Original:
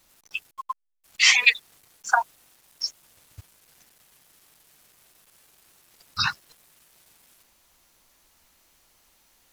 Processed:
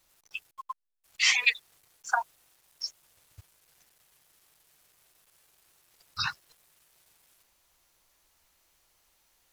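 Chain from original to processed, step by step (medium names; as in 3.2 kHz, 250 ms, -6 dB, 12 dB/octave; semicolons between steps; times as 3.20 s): peaking EQ 230 Hz -7 dB 0.65 oct; trim -6.5 dB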